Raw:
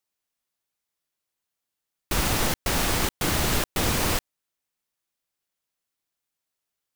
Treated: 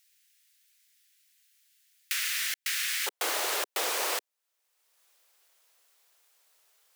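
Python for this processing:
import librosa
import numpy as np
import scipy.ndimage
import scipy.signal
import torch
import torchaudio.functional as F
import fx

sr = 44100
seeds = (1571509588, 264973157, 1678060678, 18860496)

y = fx.steep_highpass(x, sr, hz=fx.steps((0.0, 1700.0), (3.06, 410.0)), slope=36)
y = fx.band_squash(y, sr, depth_pct=70)
y = y * 10.0 ** (-3.5 / 20.0)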